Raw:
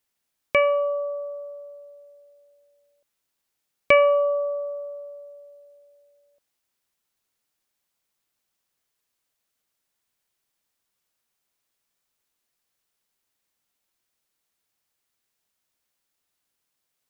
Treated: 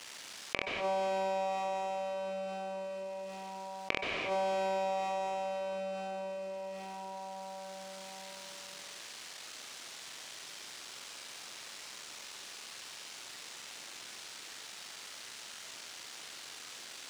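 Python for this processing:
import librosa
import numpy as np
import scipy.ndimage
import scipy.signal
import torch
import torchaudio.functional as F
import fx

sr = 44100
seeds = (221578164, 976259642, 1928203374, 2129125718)

y = fx.cycle_switch(x, sr, every=3, mode='muted')
y = fx.highpass(y, sr, hz=280.0, slope=6)
y = fx.high_shelf(y, sr, hz=2500.0, db=9.5)
y = fx.gate_flip(y, sr, shuts_db=-15.0, range_db=-38)
y = fx.air_absorb(y, sr, metres=100.0)
y = fx.room_early_taps(y, sr, ms=(43, 69), db=(-6.0, -13.0))
y = fx.rev_plate(y, sr, seeds[0], rt60_s=4.0, hf_ratio=0.75, predelay_ms=115, drr_db=4.5)
y = fx.env_flatten(y, sr, amount_pct=70)
y = y * librosa.db_to_amplitude(-6.0)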